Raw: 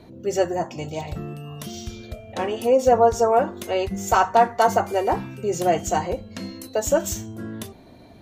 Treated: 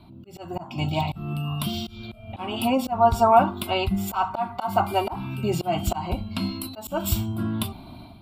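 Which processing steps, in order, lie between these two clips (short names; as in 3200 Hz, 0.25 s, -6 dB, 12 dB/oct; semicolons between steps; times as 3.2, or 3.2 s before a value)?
fixed phaser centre 1800 Hz, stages 6; AGC gain up to 9.5 dB; auto swell 0.257 s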